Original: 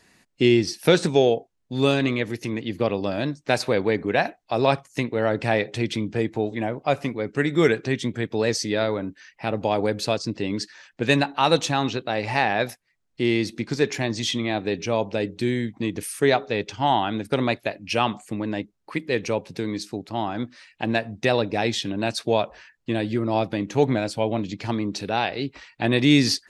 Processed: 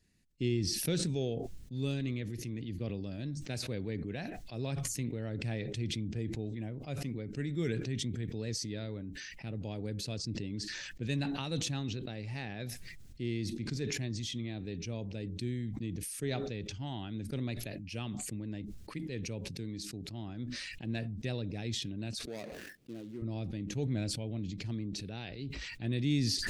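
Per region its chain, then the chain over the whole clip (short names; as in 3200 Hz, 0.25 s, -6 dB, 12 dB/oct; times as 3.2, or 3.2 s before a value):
22.25–23.22 median filter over 41 samples + HPF 300 Hz
whole clip: passive tone stack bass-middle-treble 10-0-1; sustainer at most 23 dB/s; gain +4.5 dB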